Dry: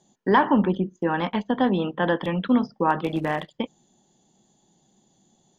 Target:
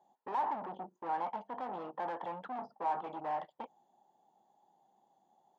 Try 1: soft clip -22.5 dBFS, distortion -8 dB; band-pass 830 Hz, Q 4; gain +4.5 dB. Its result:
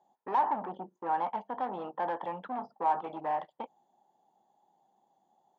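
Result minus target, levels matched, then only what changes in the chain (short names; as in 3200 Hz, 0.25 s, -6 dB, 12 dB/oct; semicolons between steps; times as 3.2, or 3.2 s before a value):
soft clip: distortion -4 dB
change: soft clip -30 dBFS, distortion -4 dB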